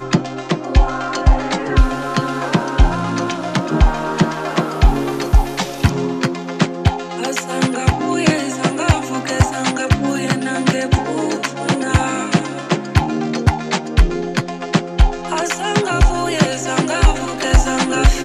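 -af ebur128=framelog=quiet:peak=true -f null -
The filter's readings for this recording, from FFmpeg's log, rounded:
Integrated loudness:
  I:         -18.0 LUFS
  Threshold: -28.0 LUFS
Loudness range:
  LRA:         1.1 LU
  Threshold: -38.1 LUFS
  LRA low:   -18.7 LUFS
  LRA high:  -17.5 LUFS
True peak:
  Peak:       -1.1 dBFS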